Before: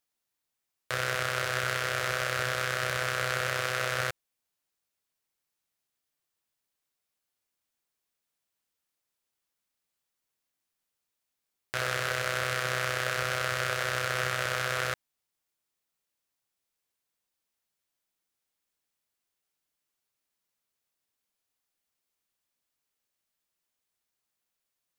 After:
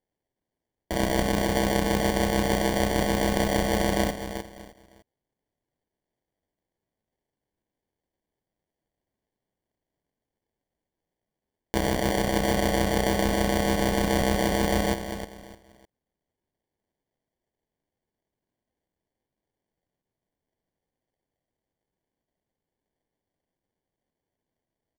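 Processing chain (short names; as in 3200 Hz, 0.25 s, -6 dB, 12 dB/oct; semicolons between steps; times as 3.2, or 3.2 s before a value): mistuned SSB +110 Hz 500–2700 Hz; feedback echo 0.304 s, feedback 30%, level -9.5 dB; sample-rate reducer 1300 Hz, jitter 0%; gain +7 dB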